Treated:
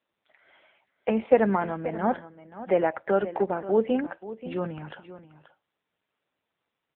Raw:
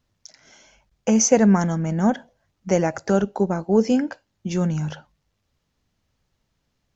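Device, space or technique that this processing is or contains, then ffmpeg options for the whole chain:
satellite phone: -af "highpass=370,lowpass=3.3k,aecho=1:1:532:0.2" -ar 8000 -c:a libopencore_amrnb -b:a 6700

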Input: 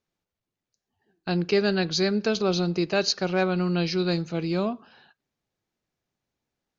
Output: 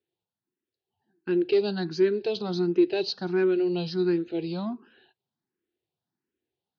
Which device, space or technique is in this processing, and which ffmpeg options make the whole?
barber-pole phaser into a guitar amplifier: -filter_complex "[0:a]asplit=2[a][b];[b]afreqshift=1.4[c];[a][c]amix=inputs=2:normalize=1,asoftclip=type=tanh:threshold=-16.5dB,highpass=110,equalizer=f=180:t=q:w=4:g=-3,equalizer=f=360:t=q:w=4:g=9,equalizer=f=590:t=q:w=4:g=-8,equalizer=f=1.2k:t=q:w=4:g=-9,equalizer=f=2.2k:t=q:w=4:g=-7,lowpass=f=4.2k:w=0.5412,lowpass=f=4.2k:w=1.3066"

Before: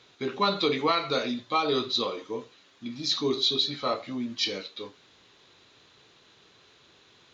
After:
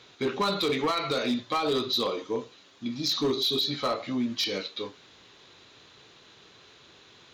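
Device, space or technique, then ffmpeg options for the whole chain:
limiter into clipper: -filter_complex "[0:a]asettb=1/sr,asplit=3[a][b][c];[a]atrim=end=1.584[d];[b]atrim=start=1.58:end=3.78,asetpts=PTS-STARTPTS,afade=t=in:d=0.004:c=qsin,afade=t=out:st=2.196:d=0.004:c=qsin,equalizer=f=1.9k:t=o:w=1.3:g=-3[e];[c]atrim=start=3.776[f];[d][e]acrossfade=d=0.004:c1=hsin:c2=qsin[g];[g][f]acrossfade=d=0.004:c1=qsin:c2=hsin,alimiter=limit=-20dB:level=0:latency=1:release=123,asoftclip=type=hard:threshold=-25dB,volume=4dB"

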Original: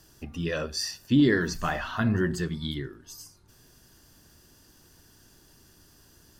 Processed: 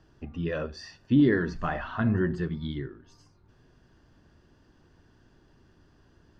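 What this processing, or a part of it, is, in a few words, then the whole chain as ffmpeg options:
phone in a pocket: -af "lowpass=3.6k,highshelf=f=2.5k:g=-10"

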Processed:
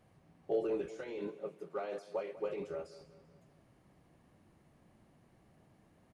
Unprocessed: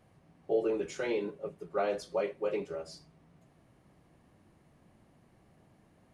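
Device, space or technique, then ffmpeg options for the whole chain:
de-esser from a sidechain: -filter_complex "[0:a]asettb=1/sr,asplit=3[a][b][c];[a]atrim=end=1.274[d];[b]atrim=start=1.27:end=2.37,asetpts=PTS-STARTPTS,afade=t=in:d=0.004:c=qsin,afade=t=out:st=1.096:d=0.004:c=qsin,highpass=210[e];[c]atrim=start=2.366[f];[d][e]acrossfade=d=0.004:c1=hsin:c2=qsin[g];[g][f]acrossfade=d=0.004:c1=qsin:c2=hsin,asplit=2[h][i];[i]highpass=4k,apad=whole_len=270521[j];[h][j]sidechaincompress=threshold=-58dB:ratio=8:attack=1.2:release=35,aecho=1:1:194|388|582|776:0.15|0.0733|0.0359|0.0176,volume=-2.5dB"

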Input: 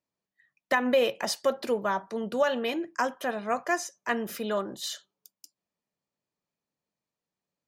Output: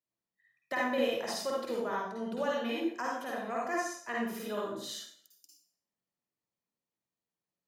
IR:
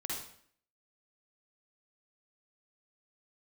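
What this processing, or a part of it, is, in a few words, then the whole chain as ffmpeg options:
bathroom: -filter_complex "[1:a]atrim=start_sample=2205[a];[0:a][a]afir=irnorm=-1:irlink=0,volume=-7dB"

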